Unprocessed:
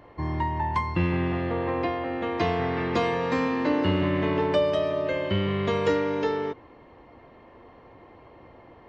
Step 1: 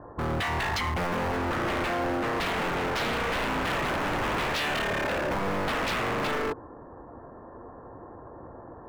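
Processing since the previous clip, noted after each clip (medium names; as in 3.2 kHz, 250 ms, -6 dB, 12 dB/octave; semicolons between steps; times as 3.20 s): steep low-pass 1.7 kHz 96 dB/octave; in parallel at -4 dB: bit crusher 5-bit; on the sum: wavefolder -25 dBFS; trim +5.5 dB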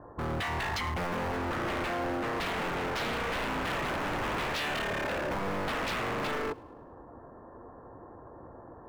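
feedback echo behind a high-pass 105 ms, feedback 48%, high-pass 2.1 kHz, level -22.5 dB; trim -4 dB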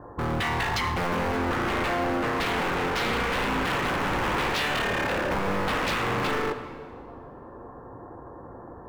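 band-stop 640 Hz, Q 12; on a send at -8 dB: treble shelf 8 kHz -9.5 dB + reverberation RT60 1.8 s, pre-delay 13 ms; on the sum: trim +5.5 dB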